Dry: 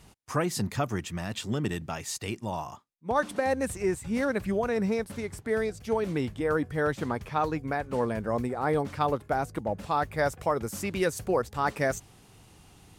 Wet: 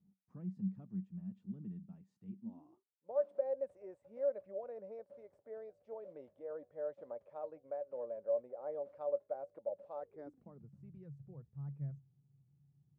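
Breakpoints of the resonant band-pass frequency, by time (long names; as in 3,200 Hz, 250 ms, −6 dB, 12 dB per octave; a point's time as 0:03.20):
resonant band-pass, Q 18
0:02.36 190 Hz
0:03.08 570 Hz
0:09.98 570 Hz
0:10.68 140 Hz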